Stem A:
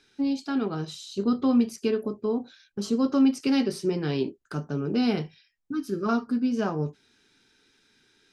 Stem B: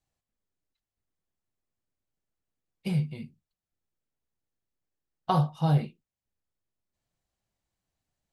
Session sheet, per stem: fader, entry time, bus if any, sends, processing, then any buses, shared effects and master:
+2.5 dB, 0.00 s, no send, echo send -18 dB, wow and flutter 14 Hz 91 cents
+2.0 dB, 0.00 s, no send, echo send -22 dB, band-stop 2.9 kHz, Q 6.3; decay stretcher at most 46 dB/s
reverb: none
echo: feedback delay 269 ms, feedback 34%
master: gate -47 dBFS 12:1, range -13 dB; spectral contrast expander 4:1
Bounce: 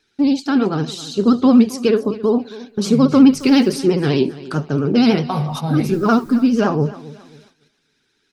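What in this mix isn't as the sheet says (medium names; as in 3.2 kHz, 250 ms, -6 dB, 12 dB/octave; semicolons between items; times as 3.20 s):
stem A +2.5 dB -> +10.5 dB; master: missing spectral contrast expander 4:1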